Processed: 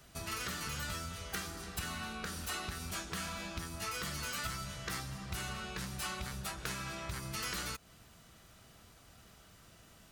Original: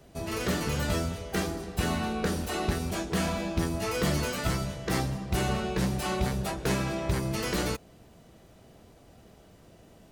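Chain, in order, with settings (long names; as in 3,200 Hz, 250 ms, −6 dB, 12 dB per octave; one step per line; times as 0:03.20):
parametric band 1,300 Hz +7 dB 0.6 octaves
downward compressor, threshold −33 dBFS, peak gain reduction 11.5 dB
guitar amp tone stack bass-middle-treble 5-5-5
level +9.5 dB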